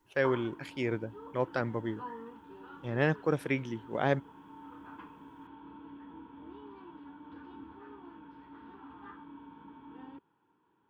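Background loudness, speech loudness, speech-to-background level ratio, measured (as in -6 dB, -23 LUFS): -49.5 LUFS, -33.0 LUFS, 16.5 dB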